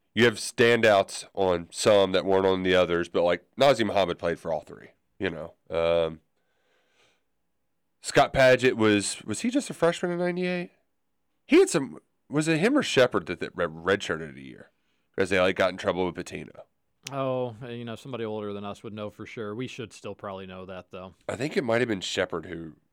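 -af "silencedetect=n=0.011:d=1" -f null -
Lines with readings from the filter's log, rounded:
silence_start: 6.16
silence_end: 8.04 | silence_duration: 1.88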